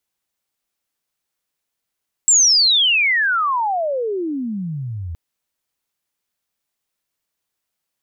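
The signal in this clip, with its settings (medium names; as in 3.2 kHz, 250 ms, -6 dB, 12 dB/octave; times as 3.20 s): sweep logarithmic 7.7 kHz -> 79 Hz -9 dBFS -> -25 dBFS 2.87 s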